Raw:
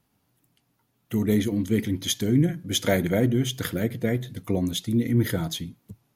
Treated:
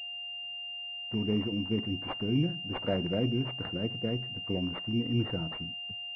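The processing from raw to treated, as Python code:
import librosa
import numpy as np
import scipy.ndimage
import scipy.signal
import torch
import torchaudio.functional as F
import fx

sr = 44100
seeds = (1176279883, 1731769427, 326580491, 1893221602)

y = x + 10.0 ** (-51.0 / 20.0) * np.sin(2.0 * np.pi * 710.0 * np.arange(len(x)) / sr)
y = fx.pwm(y, sr, carrier_hz=2800.0)
y = y * librosa.db_to_amplitude(-7.5)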